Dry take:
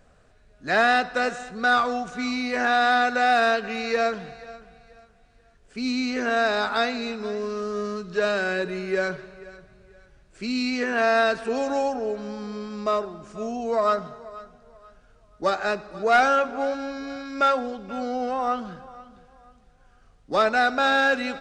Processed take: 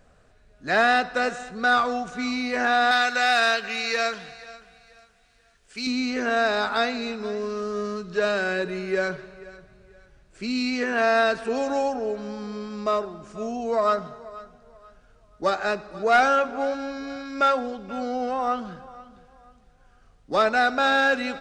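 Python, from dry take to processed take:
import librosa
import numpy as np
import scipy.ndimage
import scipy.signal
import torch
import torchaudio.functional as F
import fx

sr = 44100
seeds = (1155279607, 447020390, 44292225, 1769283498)

y = fx.tilt_shelf(x, sr, db=-7.5, hz=1200.0, at=(2.91, 5.87))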